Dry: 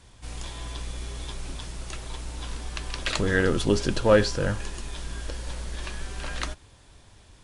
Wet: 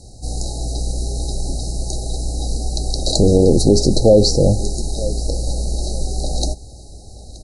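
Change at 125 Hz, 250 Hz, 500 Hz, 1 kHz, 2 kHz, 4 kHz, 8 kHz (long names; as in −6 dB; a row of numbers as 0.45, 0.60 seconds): +12.5 dB, +11.0 dB, +10.0 dB, +3.0 dB, below −40 dB, +9.5 dB, +13.0 dB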